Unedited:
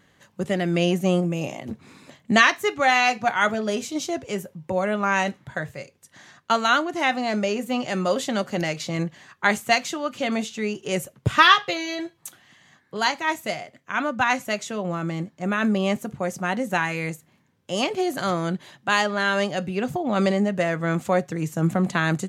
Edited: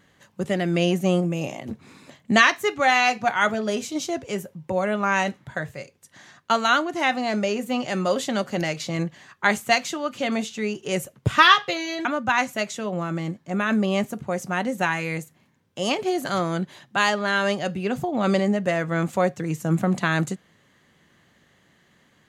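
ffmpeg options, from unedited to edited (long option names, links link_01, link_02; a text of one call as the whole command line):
ffmpeg -i in.wav -filter_complex "[0:a]asplit=2[link_01][link_02];[link_01]atrim=end=12.052[link_03];[link_02]atrim=start=13.968[link_04];[link_03][link_04]acrossfade=duration=0.004:curve1=hsin:curve2=hsin" out.wav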